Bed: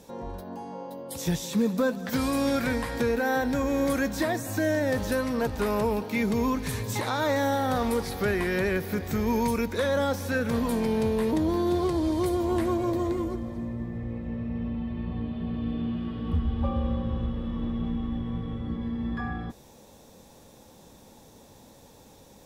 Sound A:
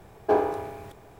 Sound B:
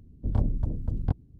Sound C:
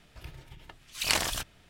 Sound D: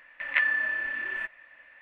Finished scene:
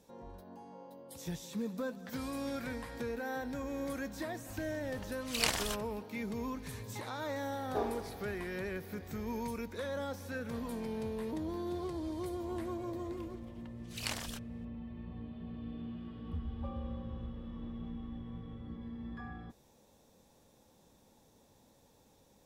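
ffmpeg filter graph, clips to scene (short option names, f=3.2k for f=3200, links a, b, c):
-filter_complex "[3:a]asplit=2[a][b];[0:a]volume=-13dB[c];[a]atrim=end=1.69,asetpts=PTS-STARTPTS,volume=-5dB,afade=t=in:d=0.004:c=hsin,afade=t=out:st=1.686:d=0.004:c=hsin,adelay=190953S[d];[1:a]atrim=end=1.19,asetpts=PTS-STARTPTS,volume=-14dB,afade=t=in:d=0.004:c=hsin,afade=t=out:st=1.186:d=0.004:c=hsin,adelay=328986S[e];[b]atrim=end=1.69,asetpts=PTS-STARTPTS,volume=-12dB,afade=t=in:d=0.004:c=hsin,afade=t=out:st=1.686:d=0.004:c=hsin,adelay=12960[f];[c][d][e][f]amix=inputs=4:normalize=0"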